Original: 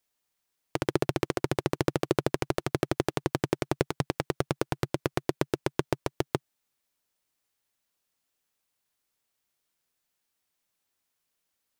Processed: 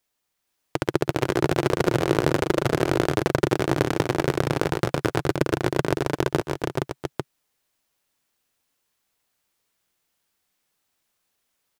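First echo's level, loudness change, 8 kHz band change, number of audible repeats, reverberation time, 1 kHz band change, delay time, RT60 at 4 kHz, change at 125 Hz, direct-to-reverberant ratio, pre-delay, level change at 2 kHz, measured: -19.0 dB, +7.0 dB, +5.0 dB, 6, none, +7.0 dB, 0.123 s, none, +7.0 dB, none, none, +8.0 dB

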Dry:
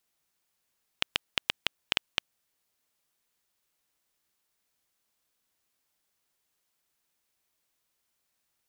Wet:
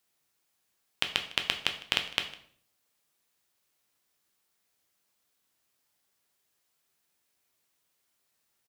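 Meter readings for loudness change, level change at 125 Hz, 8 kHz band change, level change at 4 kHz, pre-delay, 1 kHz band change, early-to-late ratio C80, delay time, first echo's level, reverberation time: +2.0 dB, +2.0 dB, +2.0 dB, +2.0 dB, 7 ms, +2.0 dB, 13.5 dB, 0.155 s, -21.0 dB, 0.55 s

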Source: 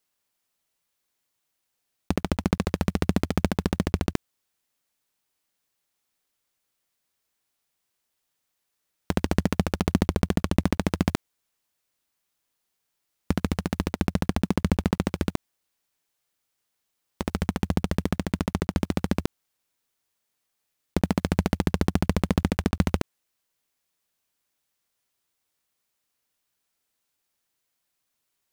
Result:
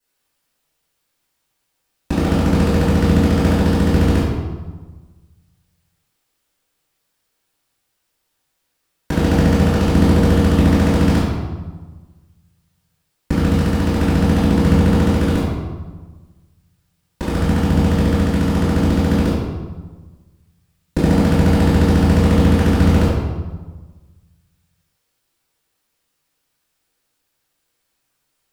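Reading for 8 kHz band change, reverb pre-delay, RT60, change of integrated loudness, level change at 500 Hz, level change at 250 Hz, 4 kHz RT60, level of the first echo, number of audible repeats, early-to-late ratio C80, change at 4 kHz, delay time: +6.5 dB, 3 ms, 1.4 s, +11.0 dB, +11.0 dB, +11.0 dB, 0.90 s, none, none, 1.5 dB, +8.0 dB, none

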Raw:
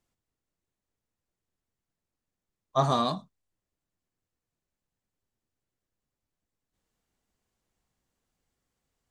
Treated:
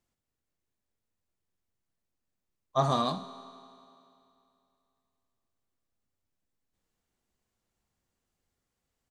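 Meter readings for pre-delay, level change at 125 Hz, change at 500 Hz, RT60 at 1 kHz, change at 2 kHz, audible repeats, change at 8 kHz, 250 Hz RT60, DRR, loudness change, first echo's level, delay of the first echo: 5 ms, -2.0 dB, -1.5 dB, 2.7 s, -2.0 dB, 1, -1.5 dB, 2.7 s, 9.5 dB, -2.0 dB, -15.0 dB, 66 ms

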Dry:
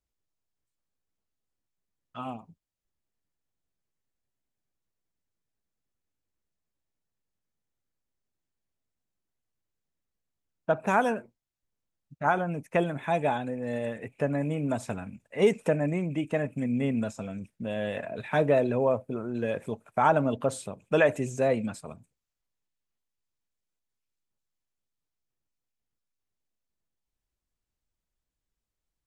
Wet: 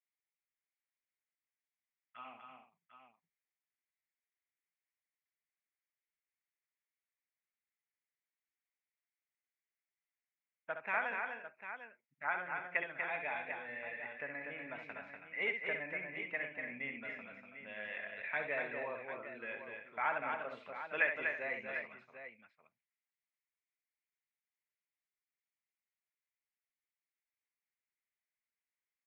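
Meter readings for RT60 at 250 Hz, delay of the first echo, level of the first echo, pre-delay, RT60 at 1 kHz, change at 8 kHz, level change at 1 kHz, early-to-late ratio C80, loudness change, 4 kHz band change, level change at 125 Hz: none, 66 ms, -7.5 dB, none, none, under -30 dB, -12.0 dB, none, -11.0 dB, -10.0 dB, -29.0 dB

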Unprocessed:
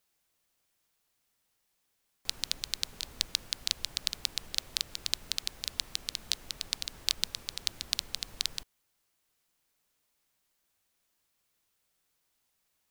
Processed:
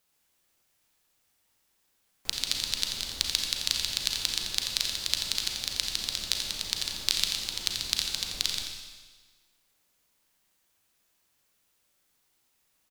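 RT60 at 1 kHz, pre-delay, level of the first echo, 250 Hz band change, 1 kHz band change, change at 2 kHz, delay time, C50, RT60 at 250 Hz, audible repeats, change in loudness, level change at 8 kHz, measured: 1.4 s, 34 ms, -7.5 dB, +6.0 dB, +5.0 dB, +5.5 dB, 86 ms, 1.5 dB, 1.4 s, 1, +5.0 dB, +5.5 dB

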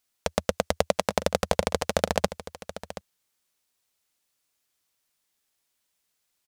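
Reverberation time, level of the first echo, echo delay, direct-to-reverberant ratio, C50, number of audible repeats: none, -14.0 dB, 0.727 s, none, none, 1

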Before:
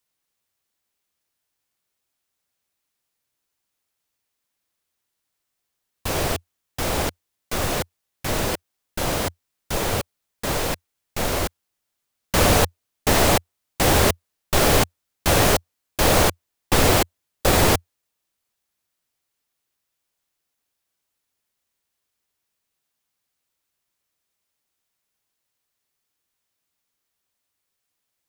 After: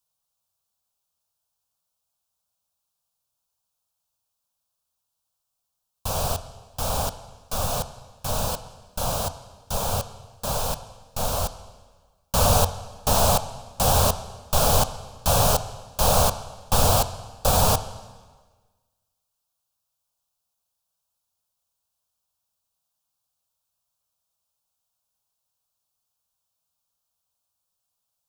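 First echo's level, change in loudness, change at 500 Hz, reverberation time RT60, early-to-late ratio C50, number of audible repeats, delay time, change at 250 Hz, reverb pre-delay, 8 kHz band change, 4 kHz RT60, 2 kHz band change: none, -2.0 dB, -3.5 dB, 1.4 s, 13.0 dB, none, none, -7.5 dB, 7 ms, -0.5 dB, 1.3 s, -11.0 dB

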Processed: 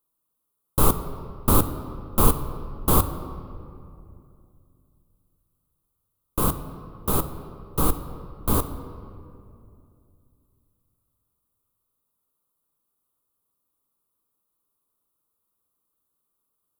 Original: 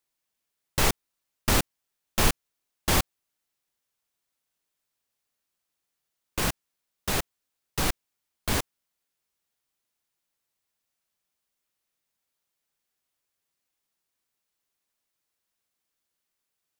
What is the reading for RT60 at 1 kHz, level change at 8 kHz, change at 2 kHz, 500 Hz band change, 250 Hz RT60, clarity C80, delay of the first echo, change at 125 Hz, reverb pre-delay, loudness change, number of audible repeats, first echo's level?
2.4 s, +0.5 dB, -10.0 dB, +5.0 dB, 3.1 s, 11.5 dB, none, +6.5 dB, 4 ms, +3.5 dB, none, none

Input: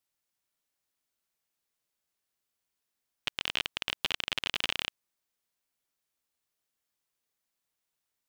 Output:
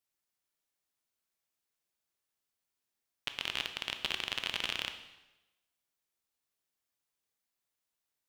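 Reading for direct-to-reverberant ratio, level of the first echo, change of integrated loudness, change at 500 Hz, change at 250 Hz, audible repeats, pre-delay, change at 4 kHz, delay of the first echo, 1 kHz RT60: 7.0 dB, none, -3.0 dB, -2.5 dB, -2.5 dB, none, 14 ms, -3.0 dB, none, 1.0 s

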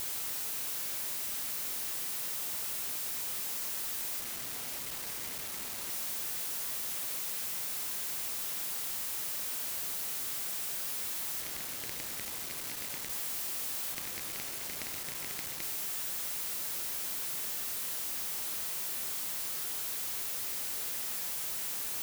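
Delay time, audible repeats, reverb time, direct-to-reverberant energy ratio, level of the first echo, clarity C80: none, none, 1.2 s, 10.0 dB, none, 14.0 dB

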